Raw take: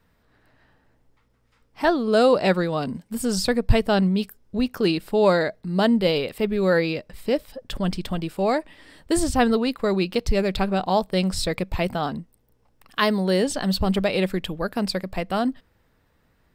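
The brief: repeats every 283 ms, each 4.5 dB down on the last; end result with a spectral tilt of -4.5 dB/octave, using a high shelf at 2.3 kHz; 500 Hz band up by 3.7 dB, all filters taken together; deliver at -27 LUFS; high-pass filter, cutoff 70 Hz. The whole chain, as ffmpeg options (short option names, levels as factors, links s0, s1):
-af "highpass=70,equalizer=f=500:t=o:g=4,highshelf=f=2300:g=6.5,aecho=1:1:283|566|849|1132|1415|1698|1981|2264|2547:0.596|0.357|0.214|0.129|0.0772|0.0463|0.0278|0.0167|0.01,volume=0.398"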